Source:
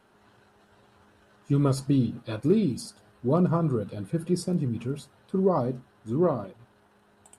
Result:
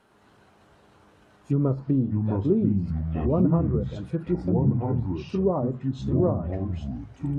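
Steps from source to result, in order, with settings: ever faster or slower copies 107 ms, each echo -5 st, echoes 2; low-pass that closes with the level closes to 870 Hz, closed at -20 dBFS

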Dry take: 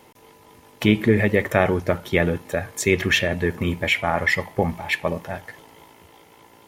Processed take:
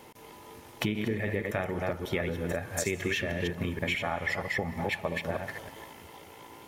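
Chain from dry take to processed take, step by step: chunks repeated in reverse 158 ms, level -4.5 dB; compression 6:1, threshold -28 dBFS, peak gain reduction 16 dB; on a send: reverberation, pre-delay 123 ms, DRR 16.5 dB

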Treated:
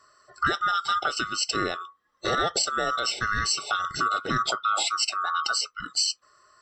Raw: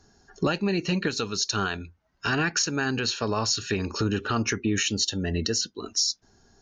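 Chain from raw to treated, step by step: split-band scrambler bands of 1 kHz

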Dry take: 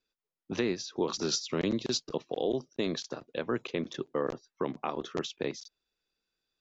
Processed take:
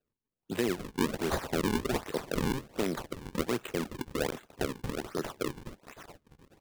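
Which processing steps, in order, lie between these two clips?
feedback echo behind a high-pass 424 ms, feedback 38%, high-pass 2.1 kHz, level -3 dB; decimation with a swept rate 39×, swing 160% 1.3 Hz

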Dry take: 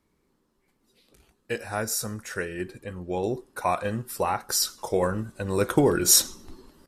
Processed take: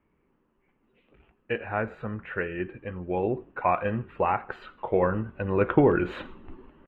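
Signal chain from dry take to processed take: elliptic low-pass 2.8 kHz, stop band 50 dB; on a send: frequency-shifting echo 82 ms, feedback 42%, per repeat -36 Hz, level -23.5 dB; on the sum: trim +1.5 dB

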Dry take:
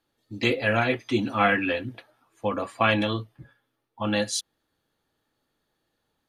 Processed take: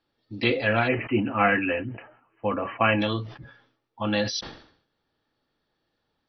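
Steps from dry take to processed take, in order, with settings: brick-wall FIR low-pass 5.9 kHz, from 0.87 s 3.1 kHz, from 2.99 s 6 kHz; decay stretcher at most 97 dB/s

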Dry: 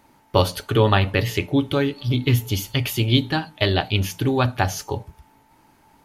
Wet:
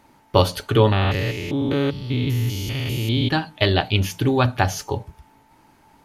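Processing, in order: 0.92–3.30 s: spectrogram pixelated in time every 200 ms; treble shelf 11 kHz -5.5 dB; trim +1.5 dB

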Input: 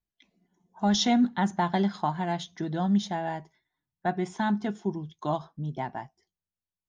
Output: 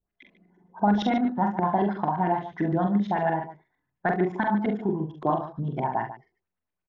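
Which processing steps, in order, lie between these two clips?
compression 2.5:1, threshold -31 dBFS, peak gain reduction 8.5 dB; LFO low-pass saw up 8.8 Hz 350–2600 Hz; multi-tap echo 44/68/72/145 ms -4.5/-14.5/-17/-13 dB; trim +5 dB

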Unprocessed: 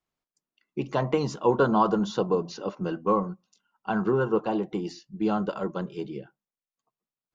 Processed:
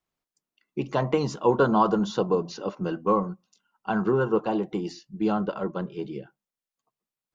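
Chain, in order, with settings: 5.32–6.03 s: distance through air 120 m; trim +1 dB

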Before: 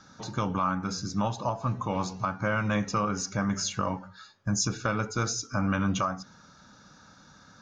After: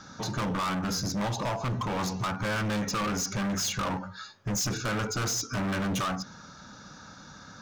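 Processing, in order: overload inside the chain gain 34 dB; trim +6.5 dB

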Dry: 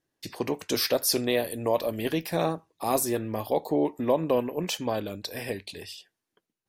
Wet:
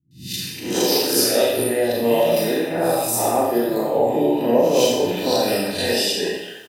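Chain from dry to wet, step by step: reverse spectral sustain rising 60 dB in 0.45 s; recorder AGC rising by 59 dB/s; hum notches 50/100 Hz; comb of notches 1.1 kHz; three bands offset in time lows, highs, mids 110/450 ms, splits 170/2200 Hz; Schroeder reverb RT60 0.82 s, combs from 30 ms, DRR -2 dB; trim +2.5 dB

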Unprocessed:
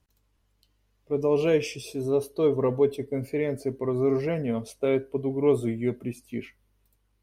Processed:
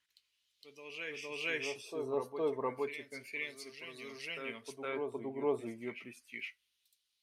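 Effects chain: FFT filter 250 Hz 0 dB, 720 Hz -7 dB, 11 kHz +13 dB; LFO band-pass sine 0.32 Hz 810–3800 Hz; reverse echo 462 ms -6.5 dB; trim +3 dB

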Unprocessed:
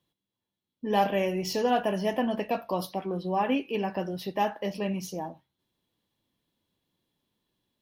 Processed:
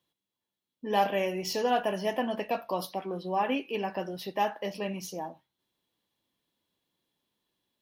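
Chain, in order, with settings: bass shelf 240 Hz -9.5 dB

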